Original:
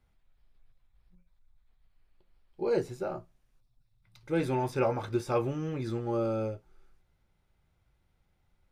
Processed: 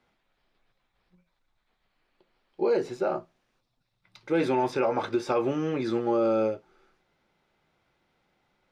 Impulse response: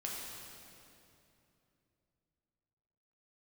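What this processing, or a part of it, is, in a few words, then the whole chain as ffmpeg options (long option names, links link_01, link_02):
DJ mixer with the lows and highs turned down: -filter_complex "[0:a]acrossover=split=190 6100:gain=0.0794 1 0.178[link_01][link_02][link_03];[link_01][link_02][link_03]amix=inputs=3:normalize=0,alimiter=level_in=1dB:limit=-24dB:level=0:latency=1:release=89,volume=-1dB,volume=8.5dB"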